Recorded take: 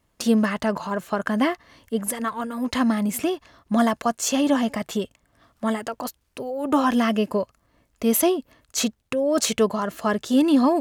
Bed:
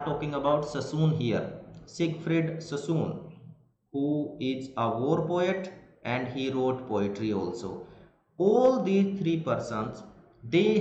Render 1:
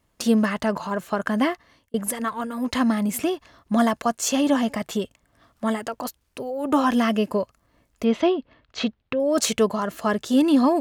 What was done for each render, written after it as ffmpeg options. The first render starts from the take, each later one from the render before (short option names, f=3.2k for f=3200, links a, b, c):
-filter_complex "[0:a]asettb=1/sr,asplit=3[a][b][c];[a]atrim=end=8.044[d];[b]atrim=start=8.04:end=9.2,asetpts=PTS-STARTPTS,afade=t=in:d=0.004:c=qsin,afade=t=out:st=1.156:d=0.004:c=qsin,lowpass=f=3.9k:w=0.5412,lowpass=f=3.9k:w=1.3066[e];[c]atrim=start=9.196[f];[d][e]acrossfade=d=0.004:c1=hsin:c2=qsin[g];[g][f]acrossfade=d=0.004:c1=qsin:c2=hsin,asplit=2[h][i];[h]atrim=end=1.94,asetpts=PTS-STARTPTS,afade=t=out:st=1.32:d=0.62:c=qsin[j];[i]atrim=start=1.94,asetpts=PTS-STARTPTS,afade=t=in:d=0.004:c=hsin[k];[j][k]concat=n=2:v=0:a=1"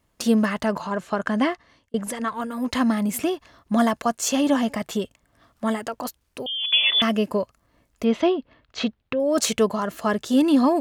-filter_complex "[0:a]asettb=1/sr,asplit=3[a][b][c];[a]atrim=end=0.824[d];[b]atrim=start=0.82:end=2.34,asetpts=PTS-STARTPTS,afade=t=in:d=0.004:c=qsin,afade=t=out:st=1.516:d=0.004:c=qsin,lowpass=8.2k[e];[c]atrim=start=2.336[f];[d][e]acrossfade=d=0.004:c1=hsin:c2=qsin[g];[g][f]acrossfade=d=0.004:c1=qsin:c2=hsin,asettb=1/sr,asplit=3[h][i][j];[h]atrim=end=6.464[k];[i]atrim=start=6.46:end=7.02,asetpts=PTS-STARTPTS,afade=t=in:d=0.004:c=qsin,afade=t=out:st=0.556:d=0.004:c=qsin,lowpass=f=3.1k:t=q:w=0.5098,lowpass=f=3.1k:t=q:w=0.6013,lowpass=f=3.1k:t=q:w=0.9,lowpass=f=3.1k:t=q:w=2.563,afreqshift=-3700[l];[j]atrim=start=7.016[m];[k][l]acrossfade=d=0.004:c1=hsin:c2=qsin[n];[n][m]acrossfade=d=0.004:c1=qsin:c2=hsin"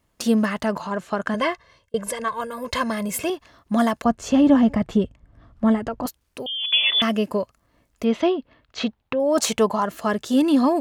-filter_complex "[0:a]asettb=1/sr,asplit=3[a][b][c];[a]atrim=end=1.344[d];[b]atrim=start=1.34:end=3.3,asetpts=PTS-STARTPTS,afade=t=in:d=0.004:c=qsin,afade=t=out:st=1.956:d=0.004:c=qsin,aecho=1:1:1.9:0.75,atrim=end_sample=86436[e];[c]atrim=start=3.296[f];[d][e]acrossfade=d=0.004:c1=hsin:c2=qsin[g];[g][f]acrossfade=d=0.004:c1=qsin:c2=hsin,asettb=1/sr,asplit=3[h][i][j];[h]atrim=end=4.044[k];[i]atrim=start=4.04:end=6.06,asetpts=PTS-STARTPTS,afade=t=in:d=0.004:c=qsin,afade=t=out:st=2.016:d=0.004:c=qsin,aemphasis=mode=reproduction:type=riaa[l];[j]atrim=start=6.056[m];[k][l]acrossfade=d=0.004:c1=hsin:c2=qsin[n];[n][m]acrossfade=d=0.004:c1=qsin:c2=hsin,asettb=1/sr,asplit=3[o][p][q];[o]atrim=end=8.874[r];[p]atrim=start=8.87:end=9.86,asetpts=PTS-STARTPTS,afade=t=in:d=0.004:c=qsin,afade=t=out:st=0.986:d=0.004:c=qsin,equalizer=f=880:t=o:w=0.62:g=8[s];[q]atrim=start=9.856[t];[r][s]acrossfade=d=0.004:c1=hsin:c2=qsin[u];[u][t]acrossfade=d=0.004:c1=qsin:c2=hsin"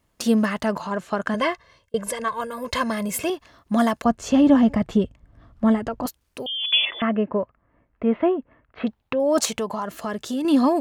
-filter_complex "[0:a]asettb=1/sr,asplit=3[a][b][c];[a]atrim=end=6.854[d];[b]atrim=start=6.85:end=8.87,asetpts=PTS-STARTPTS,afade=t=in:d=0.004:c=qsin,afade=t=out:st=2.016:d=0.004:c=qsin,lowpass=f=2.1k:w=0.5412,lowpass=f=2.1k:w=1.3066[e];[c]atrim=start=8.866[f];[d][e]acrossfade=d=0.004:c1=hsin:c2=qsin[g];[g][f]acrossfade=d=0.004:c1=qsin:c2=hsin,asettb=1/sr,asplit=3[h][i][j];[h]atrim=end=9.454[k];[i]atrim=start=9.45:end=10.45,asetpts=PTS-STARTPTS,afade=t=in:d=0.004:c=qsin,afade=t=out:st=0.996:d=0.004:c=qsin,acompressor=threshold=-26dB:ratio=2.5:attack=3.2:release=140:knee=1:detection=peak[l];[j]atrim=start=10.446[m];[k][l]acrossfade=d=0.004:c1=hsin:c2=qsin[n];[n][m]acrossfade=d=0.004:c1=qsin:c2=hsin"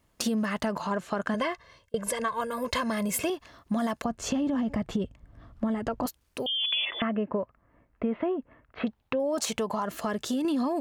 -af "alimiter=limit=-14.5dB:level=0:latency=1:release=28,acompressor=threshold=-25dB:ratio=6"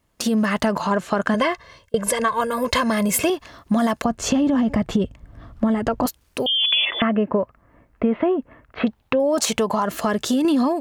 -af "dynaudnorm=f=170:g=3:m=9dB"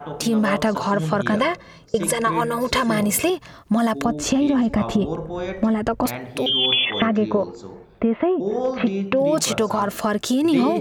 -filter_complex "[1:a]volume=-1.5dB[a];[0:a][a]amix=inputs=2:normalize=0"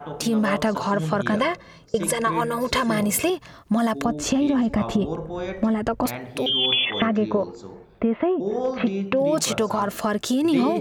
-af "volume=-2dB"